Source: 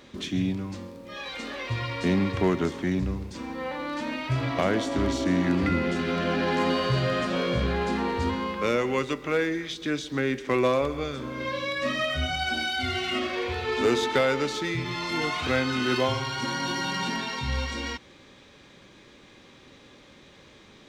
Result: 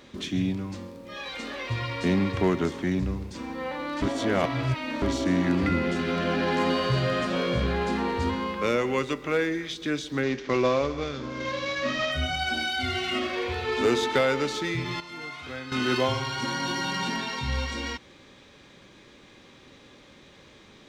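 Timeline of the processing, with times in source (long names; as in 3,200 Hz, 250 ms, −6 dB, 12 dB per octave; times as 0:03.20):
0:04.02–0:05.02: reverse
0:10.23–0:12.12: variable-slope delta modulation 32 kbit/s
0:15.00–0:15.72: tuned comb filter 140 Hz, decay 0.91 s, mix 80%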